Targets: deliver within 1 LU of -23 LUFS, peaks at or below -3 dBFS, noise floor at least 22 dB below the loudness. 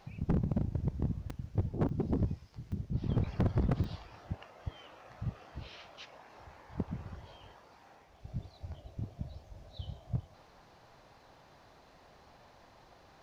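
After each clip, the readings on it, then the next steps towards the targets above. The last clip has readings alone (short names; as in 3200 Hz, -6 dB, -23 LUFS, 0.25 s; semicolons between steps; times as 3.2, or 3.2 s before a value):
clipped 0.8%; flat tops at -24.0 dBFS; dropouts 4; longest dropout 3.9 ms; loudness -37.5 LUFS; peak -24.0 dBFS; loudness target -23.0 LUFS
-> clip repair -24 dBFS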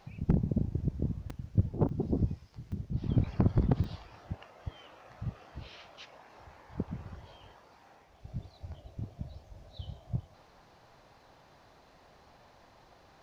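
clipped 0.0%; dropouts 4; longest dropout 3.9 ms
-> interpolate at 1.3/1.89/2.72/3.84, 3.9 ms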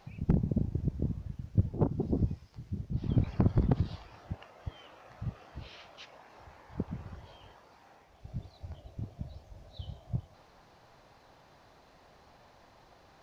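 dropouts 0; loudness -34.5 LUFS; peak -15.0 dBFS; loudness target -23.0 LUFS
-> gain +11.5 dB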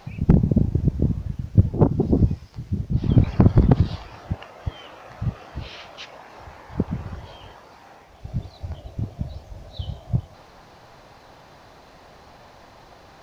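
loudness -23.0 LUFS; peak -3.5 dBFS; noise floor -49 dBFS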